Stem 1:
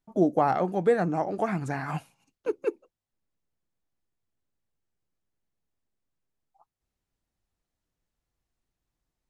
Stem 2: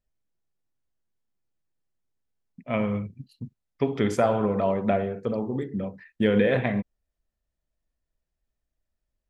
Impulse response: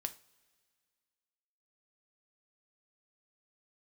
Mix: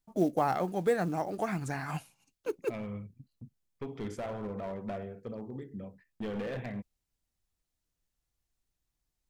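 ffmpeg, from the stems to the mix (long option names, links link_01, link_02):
-filter_complex "[0:a]highshelf=frequency=2700:gain=9.5,acrusher=bits=7:mode=log:mix=0:aa=0.000001,volume=-6dB[link_01];[1:a]agate=range=-14dB:threshold=-44dB:ratio=16:detection=peak,asoftclip=type=hard:threshold=-19.5dB,volume=-13.5dB[link_02];[link_01][link_02]amix=inputs=2:normalize=0,lowshelf=frequency=95:gain=7.5"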